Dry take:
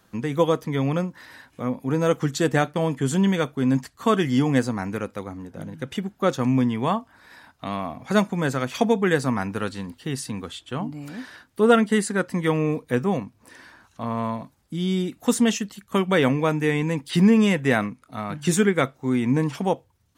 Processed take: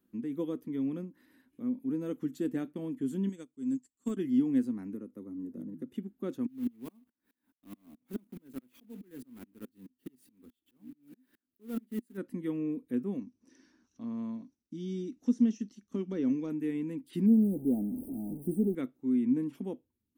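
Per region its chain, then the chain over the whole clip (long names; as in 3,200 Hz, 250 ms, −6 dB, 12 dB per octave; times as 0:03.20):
0:03.29–0:04.17: low-pass with resonance 7,600 Hz, resonance Q 7.9 + high-shelf EQ 5,600 Hz +10.5 dB + expander for the loud parts 2.5 to 1, over −28 dBFS
0:04.94–0:05.94: parametric band 2,800 Hz −10.5 dB 1.6 octaves + notch comb filter 770 Hz + multiband upward and downward compressor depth 100%
0:06.46–0:12.18: one scale factor per block 3 bits + tremolo with a ramp in dB swelling 4.7 Hz, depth 39 dB
0:13.18–0:16.50: de-essing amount 95% + low-pass with resonance 5,800 Hz, resonance Q 12 + downward expander −57 dBFS
0:17.26–0:18.75: converter with a step at zero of −23 dBFS + linear-phase brick-wall band-stop 920–8,000 Hz
whole clip: low shelf with overshoot 220 Hz −14 dB, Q 1.5; de-essing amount 45%; drawn EQ curve 130 Hz 0 dB, 240 Hz +6 dB, 450 Hz −14 dB, 730 Hz −23 dB, 2,800 Hz −17 dB, 5,400 Hz −22 dB, 7,800 Hz −18 dB, 13,000 Hz −7 dB; level −5.5 dB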